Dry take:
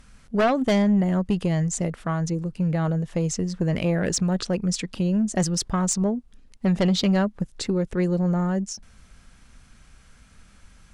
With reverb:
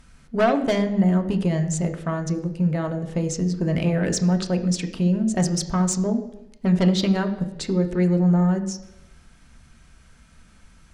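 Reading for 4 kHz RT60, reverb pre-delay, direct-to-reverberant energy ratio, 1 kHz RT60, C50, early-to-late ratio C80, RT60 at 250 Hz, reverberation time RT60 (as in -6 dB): 0.90 s, 3 ms, 5.0 dB, 0.90 s, 11.0 dB, 13.5 dB, 0.85 s, 0.90 s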